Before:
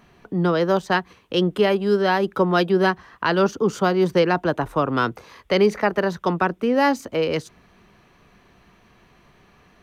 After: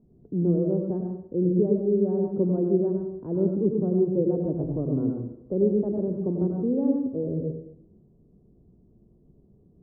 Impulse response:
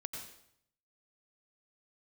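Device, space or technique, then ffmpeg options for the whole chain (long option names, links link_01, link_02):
next room: -filter_complex "[0:a]lowpass=frequency=430:width=0.5412,lowpass=frequency=430:width=1.3066[link_01];[1:a]atrim=start_sample=2205[link_02];[link_01][link_02]afir=irnorm=-1:irlink=0"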